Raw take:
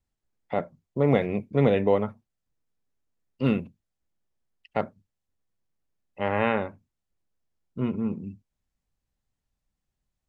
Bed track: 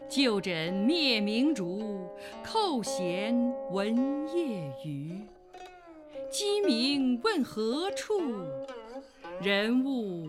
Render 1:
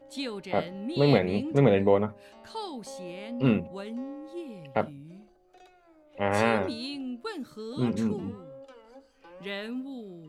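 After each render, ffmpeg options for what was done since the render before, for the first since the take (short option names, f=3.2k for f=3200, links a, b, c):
-filter_complex "[1:a]volume=-8.5dB[a];[0:a][a]amix=inputs=2:normalize=0"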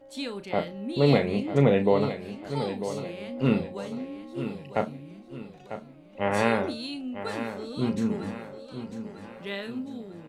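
-filter_complex "[0:a]asplit=2[a][b];[b]adelay=35,volume=-10dB[c];[a][c]amix=inputs=2:normalize=0,asplit=2[d][e];[e]aecho=0:1:947|1894|2841|3788|4735:0.299|0.128|0.0552|0.0237|0.0102[f];[d][f]amix=inputs=2:normalize=0"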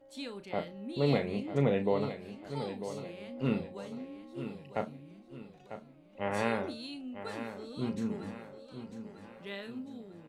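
-af "volume=-7.5dB"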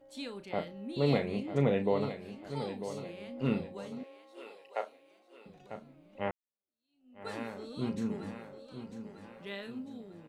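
-filter_complex "[0:a]asettb=1/sr,asplit=3[a][b][c];[a]atrim=end=4.034[d];[b]atrim=start=4.03:end=5.46,asetpts=PTS-STARTPTS,afade=t=in:d=0.004:c=qsin,afade=t=out:st=1.426:d=0.004:c=qsin,highpass=f=460:w=0.5412,highpass=f=460:w=1.3066[e];[c]atrim=start=5.456[f];[d][e]acrossfade=d=0.004:c1=hsin:c2=qsin[g];[g][f]acrossfade=d=0.004:c1=qsin:c2=hsin,asplit=2[h][i];[h]atrim=end=6.31,asetpts=PTS-STARTPTS,afade=t=out:st=6.306:d=0.004:c=hsin[j];[i]atrim=start=6.31,asetpts=PTS-STARTPTS,afade=t=in:d=0.96:c=exp[k];[j][k]concat=n=2:v=0:a=1"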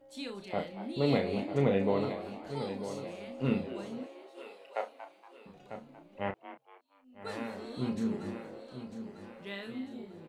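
-filter_complex "[0:a]asplit=2[a][b];[b]adelay=31,volume=-8dB[c];[a][c]amix=inputs=2:normalize=0,asplit=4[d][e][f][g];[e]adelay=234,afreqshift=130,volume=-13dB[h];[f]adelay=468,afreqshift=260,volume=-22.6dB[i];[g]adelay=702,afreqshift=390,volume=-32.3dB[j];[d][h][i][j]amix=inputs=4:normalize=0"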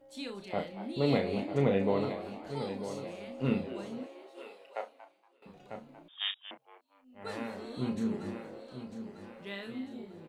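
-filter_complex "[0:a]asettb=1/sr,asplit=3[a][b][c];[a]atrim=end=6.084[d];[b]atrim=start=6.08:end=6.51,asetpts=PTS-STARTPTS,afade=t=in:d=0.004:c=qsin,afade=t=out:st=0.426:d=0.004:c=qsin,lowpass=f=3.2k:t=q:w=0.5098,lowpass=f=3.2k:t=q:w=0.6013,lowpass=f=3.2k:t=q:w=0.9,lowpass=f=3.2k:t=q:w=2.563,afreqshift=-3800[e];[c]atrim=start=6.506[f];[d][e]acrossfade=d=0.004:c1=hsin:c2=qsin[g];[g][f]acrossfade=d=0.004:c1=qsin:c2=hsin,asettb=1/sr,asplit=3[h][i][j];[h]atrim=end=7.624[k];[i]atrim=start=7.62:end=8.14,asetpts=PTS-STARTPTS,afade=t=in:d=0.004:c=qsin,afade=t=out:st=0.516:d=0.004:c=qsin,bandreject=f=5.1k:w=7.1[l];[j]atrim=start=8.136[m];[k][l]acrossfade=d=0.004:c1=hsin:c2=qsin[n];[n][m]acrossfade=d=0.004:c1=qsin:c2=hsin,asplit=2[o][p];[o]atrim=end=5.42,asetpts=PTS-STARTPTS,afade=t=out:st=4.44:d=0.98:silence=0.133352[q];[p]atrim=start=5.42,asetpts=PTS-STARTPTS,afade=t=in:d=0.004:c=hsin:silence=0.133352[r];[q][r]concat=n=2:v=0:a=1"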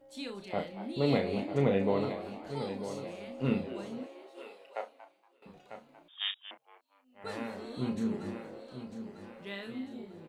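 -filter_complex "[0:a]asettb=1/sr,asplit=3[a][b][c];[a]atrim=end=5.604[d];[b]atrim=start=5.6:end=7.24,asetpts=PTS-STARTPTS,afade=t=in:d=0.004:c=qsin,afade=t=out:st=1.636:d=0.004:c=qsin,lowshelf=f=360:g=-12[e];[c]atrim=start=7.236[f];[d][e]acrossfade=d=0.004:c1=hsin:c2=qsin[g];[g][f]acrossfade=d=0.004:c1=qsin:c2=hsin"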